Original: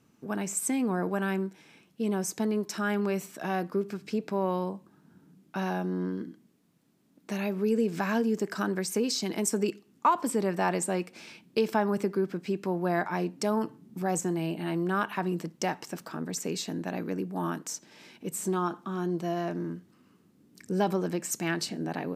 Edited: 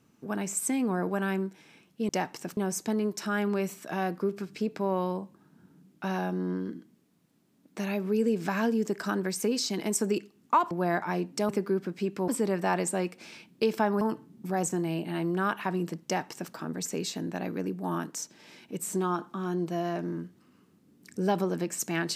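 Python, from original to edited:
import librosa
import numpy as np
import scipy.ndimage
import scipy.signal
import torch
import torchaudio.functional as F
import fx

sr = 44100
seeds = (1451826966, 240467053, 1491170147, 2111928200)

y = fx.edit(x, sr, fx.swap(start_s=10.23, length_s=1.73, other_s=12.75, other_length_s=0.78),
    fx.duplicate(start_s=15.57, length_s=0.48, to_s=2.09), tone=tone)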